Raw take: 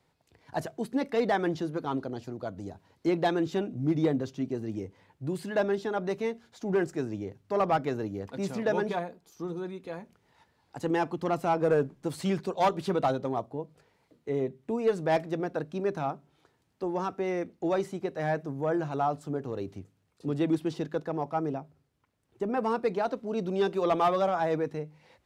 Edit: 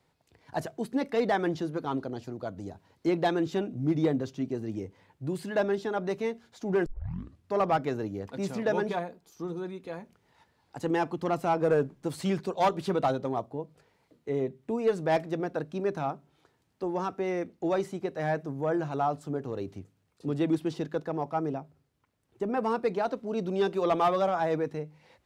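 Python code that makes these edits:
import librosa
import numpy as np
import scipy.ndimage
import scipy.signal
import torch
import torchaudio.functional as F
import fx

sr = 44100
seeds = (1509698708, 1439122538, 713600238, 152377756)

y = fx.edit(x, sr, fx.tape_start(start_s=6.86, length_s=0.66), tone=tone)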